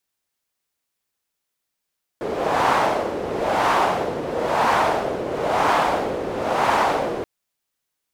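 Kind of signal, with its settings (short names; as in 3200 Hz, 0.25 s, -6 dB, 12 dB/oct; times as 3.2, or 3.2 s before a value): wind-like swept noise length 5.03 s, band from 440 Hz, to 930 Hz, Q 2, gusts 5, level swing 8.5 dB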